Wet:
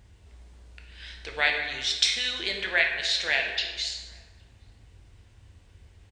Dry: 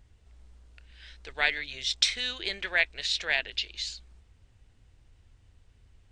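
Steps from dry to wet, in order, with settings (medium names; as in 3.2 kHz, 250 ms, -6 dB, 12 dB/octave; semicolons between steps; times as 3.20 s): high-pass 50 Hz; band-stop 1.3 kHz, Q 18; in parallel at 0 dB: compression, threshold -42 dBFS, peak gain reduction 21.5 dB; on the sum: echo from a far wall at 140 m, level -30 dB; plate-style reverb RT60 1.4 s, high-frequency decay 0.6×, DRR 2 dB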